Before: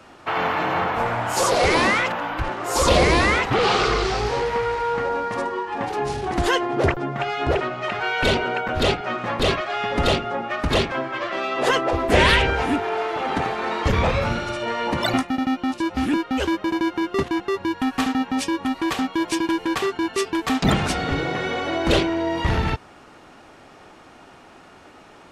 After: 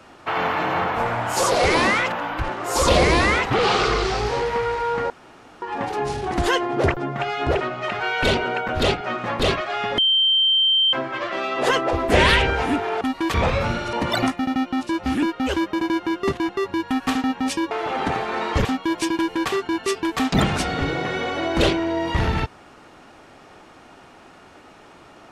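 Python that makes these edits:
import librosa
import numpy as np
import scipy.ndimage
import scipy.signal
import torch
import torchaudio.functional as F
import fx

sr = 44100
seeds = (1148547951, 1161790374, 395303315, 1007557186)

y = fx.edit(x, sr, fx.room_tone_fill(start_s=5.1, length_s=0.52),
    fx.bleep(start_s=9.98, length_s=0.95, hz=3130.0, db=-14.5),
    fx.swap(start_s=13.01, length_s=0.94, other_s=18.62, other_length_s=0.33),
    fx.cut(start_s=14.54, length_s=0.3), tone=tone)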